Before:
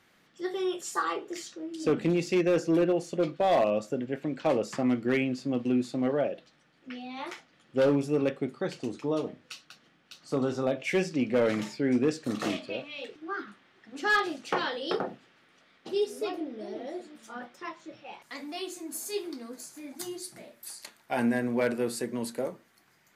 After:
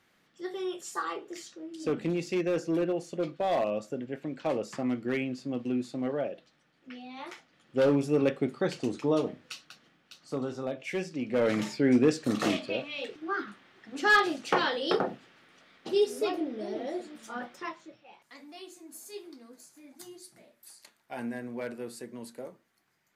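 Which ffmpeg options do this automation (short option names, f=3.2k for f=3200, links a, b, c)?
-af "volume=12dB,afade=t=in:st=7.32:d=1.25:silence=0.446684,afade=t=out:st=9.16:d=1.35:silence=0.354813,afade=t=in:st=11.22:d=0.49:silence=0.354813,afade=t=out:st=17.58:d=0.4:silence=0.237137"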